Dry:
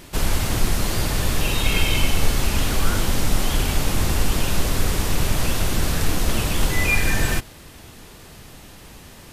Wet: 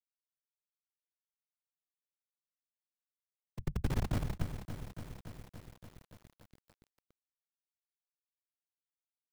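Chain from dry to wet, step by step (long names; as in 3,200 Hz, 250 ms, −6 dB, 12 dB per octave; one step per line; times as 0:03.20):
sub-octave generator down 1 octave, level +1 dB
source passing by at 0:04.03, 16 m/s, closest 1.1 metres
inverse Chebyshev band-stop filter 310–1,700 Hz, stop band 60 dB
parametric band 5,300 Hz +3.5 dB 0.27 octaves
in parallel at +2.5 dB: downward compressor 12 to 1, threshold −43 dBFS, peak gain reduction 31 dB
on the sum: comparator with hysteresis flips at −24 dBFS
random phases in short frames
feedback echo at a low word length 285 ms, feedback 80%, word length 9 bits, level −9 dB
level +1 dB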